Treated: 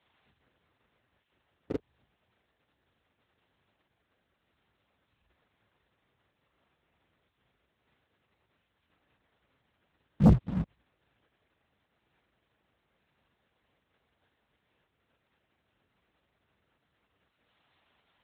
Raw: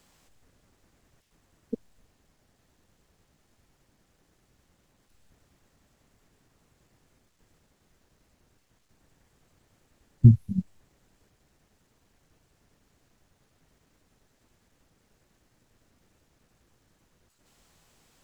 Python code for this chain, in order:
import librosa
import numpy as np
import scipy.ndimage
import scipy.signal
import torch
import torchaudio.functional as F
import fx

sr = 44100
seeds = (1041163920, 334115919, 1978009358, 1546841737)

y = fx.frame_reverse(x, sr, frame_ms=69.0)
y = fx.lpc_vocoder(y, sr, seeds[0], excitation='whisper', order=10)
y = scipy.signal.sosfilt(scipy.signal.butter(4, 51.0, 'highpass', fs=sr, output='sos'), y)
y = fx.leveller(y, sr, passes=2)
y = fx.low_shelf(y, sr, hz=450.0, db=-9.5)
y = y * 10.0 ** (4.0 / 20.0)